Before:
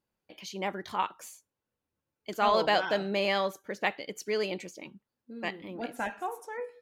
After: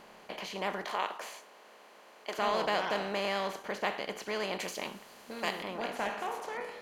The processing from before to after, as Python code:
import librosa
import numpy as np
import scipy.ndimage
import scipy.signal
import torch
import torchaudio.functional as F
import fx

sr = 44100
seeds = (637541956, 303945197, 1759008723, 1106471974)

y = fx.bin_compress(x, sr, power=0.4)
y = fx.highpass(y, sr, hz=340.0, slope=12, at=(0.85, 2.39))
y = fx.high_shelf(y, sr, hz=4300.0, db=11.5, at=(4.59, 5.63))
y = y * librosa.db_to_amplitude(-9.0)